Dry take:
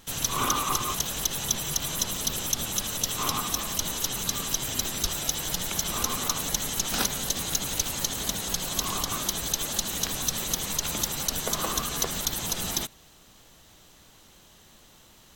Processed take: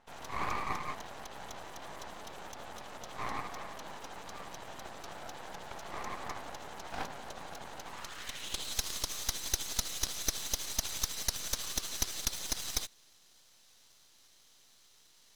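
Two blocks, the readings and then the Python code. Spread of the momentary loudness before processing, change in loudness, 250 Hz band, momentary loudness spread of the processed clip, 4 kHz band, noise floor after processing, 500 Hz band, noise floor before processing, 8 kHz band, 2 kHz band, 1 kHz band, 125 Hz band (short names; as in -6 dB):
2 LU, -11.0 dB, -13.5 dB, 13 LU, -10.0 dB, -63 dBFS, -9.0 dB, -55 dBFS, -11.5 dB, -7.5 dB, -7.5 dB, -13.0 dB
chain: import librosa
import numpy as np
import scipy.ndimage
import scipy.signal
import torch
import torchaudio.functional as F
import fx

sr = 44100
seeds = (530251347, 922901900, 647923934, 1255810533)

y = fx.filter_sweep_bandpass(x, sr, from_hz=780.0, to_hz=5000.0, start_s=7.81, end_s=8.77, q=2.0)
y = np.maximum(y, 0.0)
y = y * librosa.db_to_amplitude(3.0)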